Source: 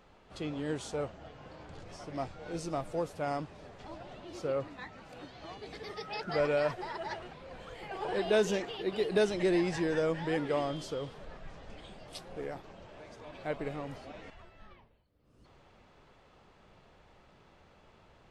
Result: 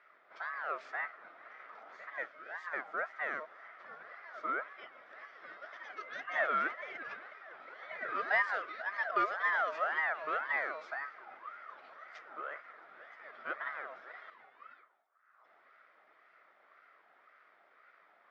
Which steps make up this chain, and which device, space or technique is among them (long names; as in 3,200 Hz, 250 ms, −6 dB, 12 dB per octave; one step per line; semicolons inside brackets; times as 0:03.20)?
0:02.10–0:02.67: high-pass filter 230 Hz
high-shelf EQ 7,900 Hz −3 dB
voice changer toy (ring modulator whose carrier an LFO sweeps 1,100 Hz, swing 30%, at 1.9 Hz; loudspeaker in its box 450–4,300 Hz, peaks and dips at 630 Hz +6 dB, 900 Hz −7 dB, 1,300 Hz +8 dB, 2,000 Hz +7 dB, 2,800 Hz −6 dB, 4,100 Hz −8 dB)
level −3.5 dB